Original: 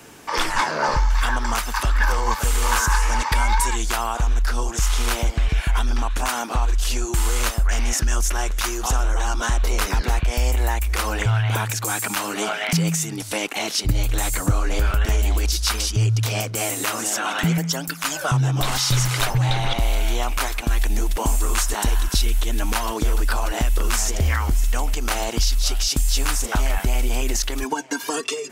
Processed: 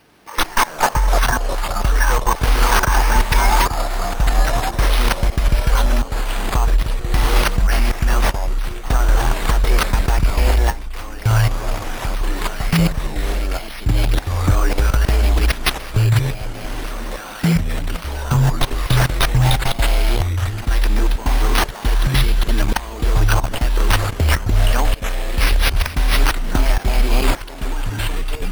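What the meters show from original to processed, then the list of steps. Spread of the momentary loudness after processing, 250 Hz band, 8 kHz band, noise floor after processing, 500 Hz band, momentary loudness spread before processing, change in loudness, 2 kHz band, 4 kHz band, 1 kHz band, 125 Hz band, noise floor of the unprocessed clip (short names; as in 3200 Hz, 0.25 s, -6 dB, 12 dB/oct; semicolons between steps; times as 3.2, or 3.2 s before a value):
8 LU, +3.5 dB, -4.5 dB, -32 dBFS, +3.5 dB, 4 LU, +3.0 dB, +3.0 dB, +1.5 dB, +3.5 dB, +4.5 dB, -32 dBFS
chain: careless resampling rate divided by 6×, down none, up hold; level quantiser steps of 20 dB; echoes that change speed 88 ms, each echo -4 st, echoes 3, each echo -6 dB; gain +6.5 dB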